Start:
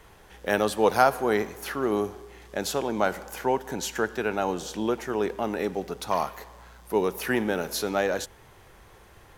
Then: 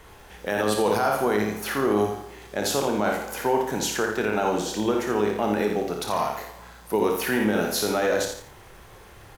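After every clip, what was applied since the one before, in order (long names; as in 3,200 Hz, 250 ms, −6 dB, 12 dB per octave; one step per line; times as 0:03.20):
ambience of single reflections 29 ms −9 dB, 57 ms −6.5 dB
brickwall limiter −17 dBFS, peak gain reduction 11.5 dB
feedback echo at a low word length 85 ms, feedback 35%, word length 9 bits, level −7.5 dB
level +3.5 dB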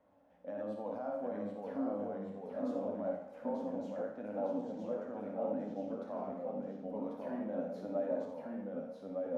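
pair of resonant band-passes 390 Hz, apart 1.1 octaves
flanger 1.4 Hz, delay 9.7 ms, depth 1.8 ms, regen +45%
delay with pitch and tempo change per echo 735 ms, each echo −1 semitone, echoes 2
level −3 dB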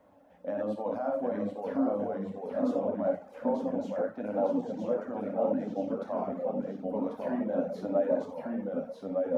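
reverb reduction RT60 0.58 s
level +9 dB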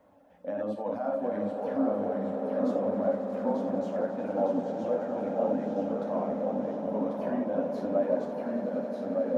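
echo that builds up and dies away 90 ms, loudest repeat 8, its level −15 dB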